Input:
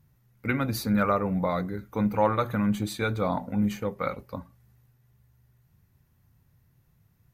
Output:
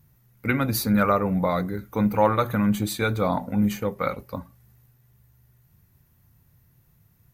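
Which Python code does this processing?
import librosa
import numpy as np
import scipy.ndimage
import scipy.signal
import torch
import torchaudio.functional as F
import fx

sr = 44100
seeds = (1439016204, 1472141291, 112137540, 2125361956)

y = fx.high_shelf(x, sr, hz=10000.0, db=9.5)
y = y * 10.0 ** (3.5 / 20.0)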